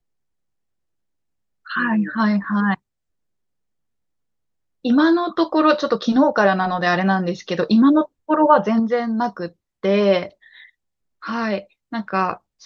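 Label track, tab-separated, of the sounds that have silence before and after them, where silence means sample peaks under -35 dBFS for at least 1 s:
1.660000	2.750000	sound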